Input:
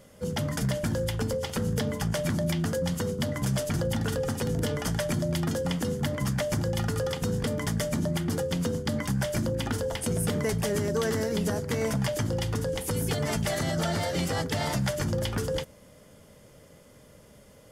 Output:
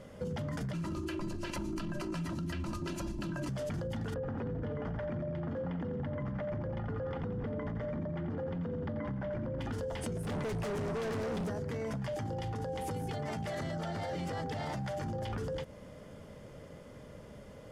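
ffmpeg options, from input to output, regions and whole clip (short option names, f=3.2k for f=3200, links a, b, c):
-filter_complex "[0:a]asettb=1/sr,asplit=3[a][b][c];[a]atrim=end=0.734[d];[b]atrim=start=0.73:end=3.49,asetpts=PTS-STARTPTS,afade=t=in:d=0.004:c=qsin,afade=t=out:st=2.756:d=0.004:c=qsin,lowshelf=f=100:g=-9.5,aecho=1:1:2.9:0.8,atrim=end_sample=121716,afreqshift=-430[e];[c]atrim=start=3.486[f];[d][e]acrossfade=d=0.004:c1=hsin:c2=qsin[g];[g][f]acrossfade=d=0.004:c1=qsin:c2=hsin,asettb=1/sr,asplit=3[h][i][j];[h]atrim=end=4.144[k];[i]atrim=start=4.14:end=9.61,asetpts=PTS-STARTPTS,afade=t=in:d=0.004:c=qsin,afade=t=out:st=5.466:d=0.004:c=qsin,lowpass=1.7k,aecho=1:1:87|174|261|348|435|522:0.355|0.195|0.107|0.059|0.0325|0.0179,atrim=end_sample=241227[l];[j]atrim=start=9.606[m];[k][l]acrossfade=d=0.004:c1=hsin:c2=qsin[n];[n][m]acrossfade=d=0.004:c1=qsin:c2=hsin,asettb=1/sr,asplit=3[o][p][q];[o]atrim=end=10.234[r];[p]atrim=start=10.23:end=11.49,asetpts=PTS-STARTPTS,afade=t=in:d=0.004:c=qsin,afade=t=out:st=1.256:d=0.004:c=qsin,aeval=exprs='val(0)+0.002*sin(2*PI*8800*n/s)':c=same,volume=34dB,asoftclip=hard,volume=-34dB[s];[q]atrim=start=11.486[t];[r][s]acrossfade=d=0.004:c1=hsin:c2=qsin[u];[u][t]acrossfade=d=0.004:c1=qsin:c2=hsin,asettb=1/sr,asplit=3[v][w][x];[v]atrim=end=12.164[y];[w]atrim=start=12.16:end=15.32,asetpts=PTS-STARTPTS,afade=t=in:d=0.004:c=qsin,afade=t=out:st=3.156:d=0.004:c=qsin,highpass=61,aeval=exprs='val(0)+0.0158*sin(2*PI*790*n/s)':c=same[z];[x]atrim=start=15.316[aa];[y][z]acrossfade=d=0.004:c1=hsin:c2=qsin[ab];[ab][aa]acrossfade=d=0.004:c1=qsin:c2=hsin,aemphasis=mode=reproduction:type=75kf,alimiter=level_in=4.5dB:limit=-24dB:level=0:latency=1:release=21,volume=-4.5dB,acompressor=threshold=-38dB:ratio=6,volume=4dB"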